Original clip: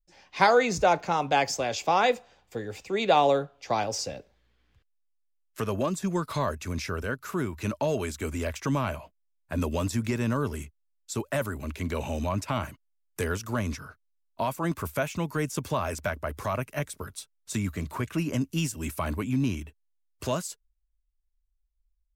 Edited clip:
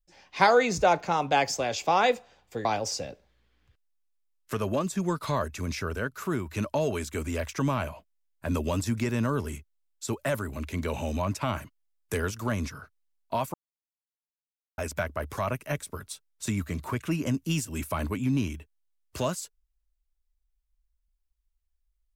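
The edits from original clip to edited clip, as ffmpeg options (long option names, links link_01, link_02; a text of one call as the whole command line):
ffmpeg -i in.wav -filter_complex "[0:a]asplit=4[link_01][link_02][link_03][link_04];[link_01]atrim=end=2.652[link_05];[link_02]atrim=start=3.718:end=14.61,asetpts=PTS-STARTPTS,afade=type=out:start_time=10.888:duration=0.004:curve=hsin[link_06];[link_03]atrim=start=14.61:end=15.85,asetpts=PTS-STARTPTS,volume=0[link_07];[link_04]atrim=start=15.85,asetpts=PTS-STARTPTS,afade=type=in:duration=0.004:curve=hsin[link_08];[link_06][link_07][link_08]concat=n=3:v=0:a=1[link_09];[link_05][link_09]acrossfade=duration=0.004:curve1=hsin:curve2=hsin" out.wav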